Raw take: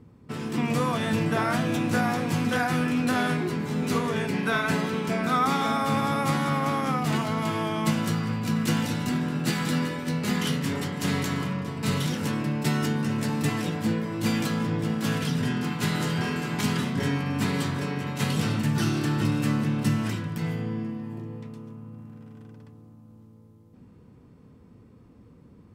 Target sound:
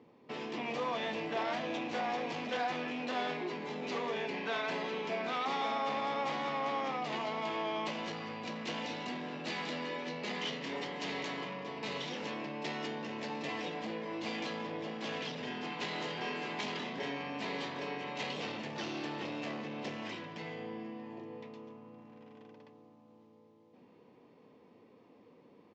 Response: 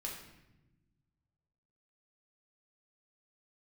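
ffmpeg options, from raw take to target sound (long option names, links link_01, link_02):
-af "aresample=16000,aeval=exprs='0.266*sin(PI/2*2.24*val(0)/0.266)':channel_layout=same,aresample=44100,acompressor=threshold=-23dB:ratio=2,highpass=500,lowpass=3400,equalizer=frequency=1400:width=2.4:gain=-12,volume=-7dB"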